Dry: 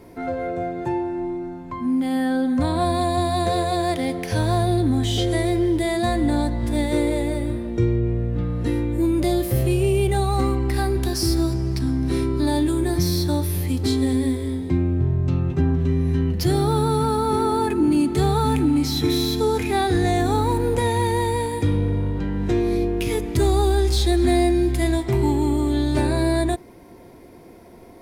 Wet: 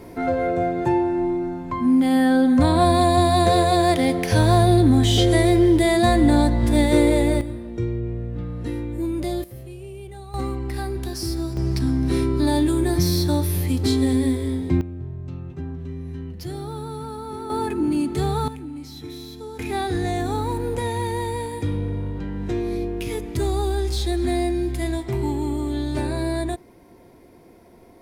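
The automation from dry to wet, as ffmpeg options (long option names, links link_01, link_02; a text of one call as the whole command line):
ffmpeg -i in.wav -af "asetnsamples=nb_out_samples=441:pad=0,asendcmd='7.41 volume volume -5.5dB;9.44 volume volume -18dB;10.34 volume volume -6dB;11.57 volume volume 1dB;14.81 volume volume -12dB;17.5 volume volume -3.5dB;18.48 volume volume -15.5dB;19.59 volume volume -4.5dB',volume=4.5dB" out.wav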